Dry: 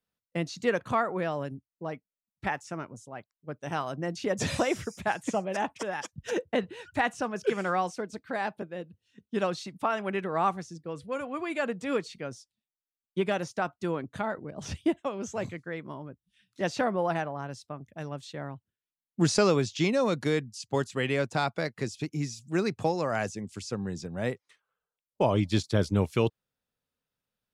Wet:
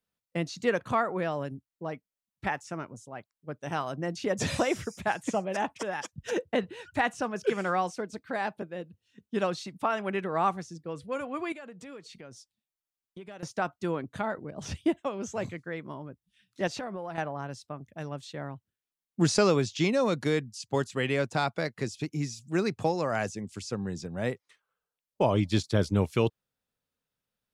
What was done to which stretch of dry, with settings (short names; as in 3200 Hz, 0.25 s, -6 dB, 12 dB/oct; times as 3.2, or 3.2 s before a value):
11.52–13.43 compressor 4:1, threshold -44 dBFS
16.67–17.18 compressor, threshold -33 dBFS